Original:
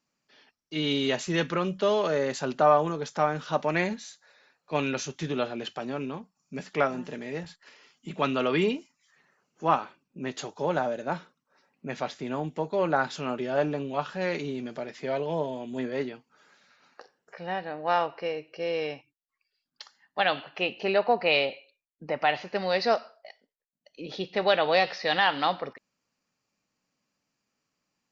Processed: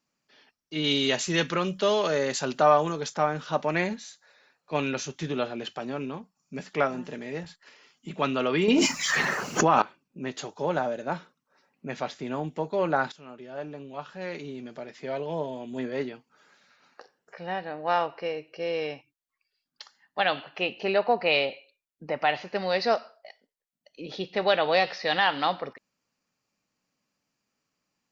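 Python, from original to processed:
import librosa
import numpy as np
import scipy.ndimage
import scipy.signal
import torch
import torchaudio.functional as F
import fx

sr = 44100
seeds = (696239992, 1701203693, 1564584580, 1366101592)

y = fx.high_shelf(x, sr, hz=2600.0, db=8.0, at=(0.84, 3.14))
y = fx.env_flatten(y, sr, amount_pct=100, at=(8.68, 9.82))
y = fx.edit(y, sr, fx.fade_in_from(start_s=13.12, length_s=2.87, floor_db=-16.5), tone=tone)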